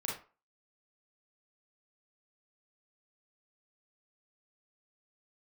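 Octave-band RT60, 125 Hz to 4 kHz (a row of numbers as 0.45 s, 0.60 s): 0.25 s, 0.30 s, 0.35 s, 0.40 s, 0.30 s, 0.25 s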